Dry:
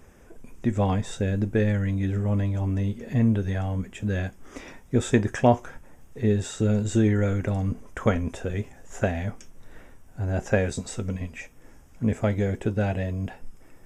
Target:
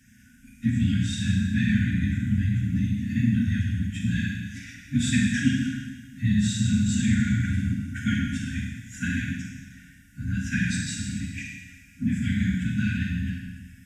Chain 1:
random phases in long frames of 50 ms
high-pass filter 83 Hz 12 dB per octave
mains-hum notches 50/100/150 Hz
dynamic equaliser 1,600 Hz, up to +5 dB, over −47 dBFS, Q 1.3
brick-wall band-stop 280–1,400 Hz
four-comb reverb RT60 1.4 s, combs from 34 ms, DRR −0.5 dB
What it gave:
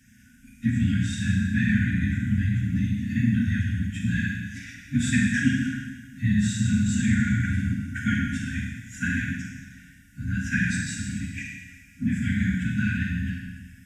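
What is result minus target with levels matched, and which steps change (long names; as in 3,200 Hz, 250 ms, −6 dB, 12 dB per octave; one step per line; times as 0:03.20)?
4,000 Hz band −3.5 dB
change: dynamic equaliser 3,900 Hz, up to +5 dB, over −47 dBFS, Q 1.3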